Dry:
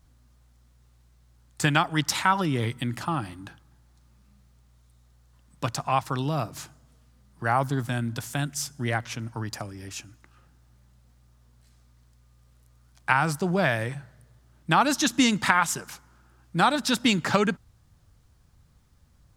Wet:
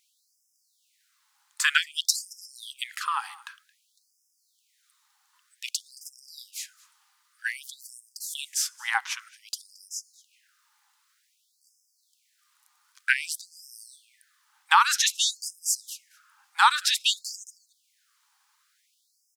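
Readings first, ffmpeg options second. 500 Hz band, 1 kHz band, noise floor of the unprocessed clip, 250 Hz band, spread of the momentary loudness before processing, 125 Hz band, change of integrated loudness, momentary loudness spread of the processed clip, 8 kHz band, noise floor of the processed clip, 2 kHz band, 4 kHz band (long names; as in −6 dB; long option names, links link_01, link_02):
below −40 dB, −2.5 dB, −60 dBFS, below −40 dB, 16 LU, below −40 dB, −0.5 dB, 21 LU, +4.5 dB, −72 dBFS, 0.0 dB, +3.5 dB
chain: -af "aecho=1:1:222:0.0708,afftfilt=real='re*gte(b*sr/1024,750*pow(5000/750,0.5+0.5*sin(2*PI*0.53*pts/sr)))':imag='im*gte(b*sr/1024,750*pow(5000/750,0.5+0.5*sin(2*PI*0.53*pts/sr)))':win_size=1024:overlap=0.75,volume=4.5dB"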